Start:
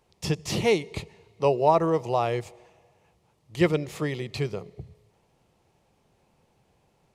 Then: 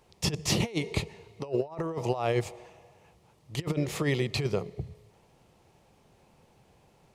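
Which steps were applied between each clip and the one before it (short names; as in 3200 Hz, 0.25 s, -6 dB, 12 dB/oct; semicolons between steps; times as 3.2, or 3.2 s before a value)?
negative-ratio compressor -28 dBFS, ratio -0.5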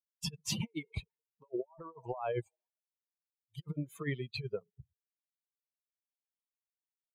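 per-bin expansion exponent 3; gain -3.5 dB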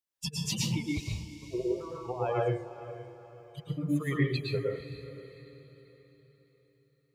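diffused feedback echo 0.486 s, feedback 42%, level -13.5 dB; plate-style reverb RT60 0.54 s, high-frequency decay 0.55×, pre-delay 0.1 s, DRR -3 dB; gain +2 dB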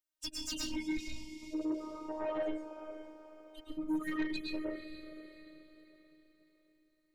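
robotiser 311 Hz; soft clip -28 dBFS, distortion -12 dB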